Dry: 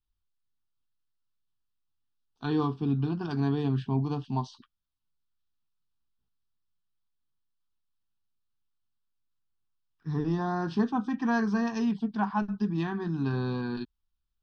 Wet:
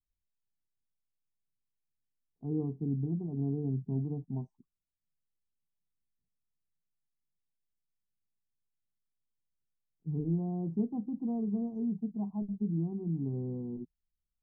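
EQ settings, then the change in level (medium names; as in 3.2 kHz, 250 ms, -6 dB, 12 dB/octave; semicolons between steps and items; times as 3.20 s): inverse Chebyshev band-stop 1.7–4.2 kHz, stop band 70 dB; low-pass 5.3 kHz; peaking EQ 170 Hz +6.5 dB 0.4 oct; -6.5 dB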